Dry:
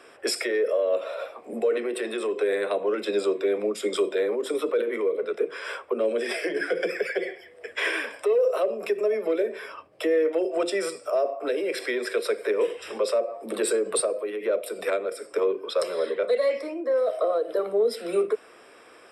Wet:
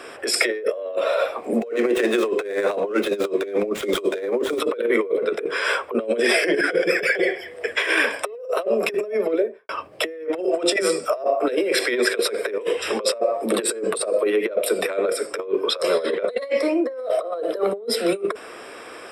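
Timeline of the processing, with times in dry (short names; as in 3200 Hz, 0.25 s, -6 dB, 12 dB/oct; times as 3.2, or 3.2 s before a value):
1.54–4.6 median filter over 9 samples
9.06–9.69 studio fade out
10.76–11.24 dispersion lows, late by 70 ms, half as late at 360 Hz
whole clip: negative-ratio compressor -29 dBFS, ratio -0.5; gain +8 dB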